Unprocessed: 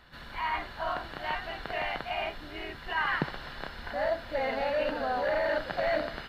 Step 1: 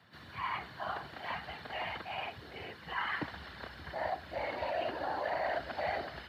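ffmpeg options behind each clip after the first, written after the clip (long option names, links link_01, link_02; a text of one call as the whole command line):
ffmpeg -i in.wav -af "afftfilt=real='hypot(re,im)*cos(2*PI*random(0))':imag='hypot(re,im)*sin(2*PI*random(1))':win_size=512:overlap=0.75,afreqshift=58,asubboost=boost=4.5:cutoff=53" out.wav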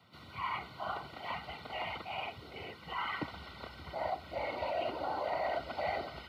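ffmpeg -i in.wav -af "asuperstop=centerf=1700:order=20:qfactor=5.2" out.wav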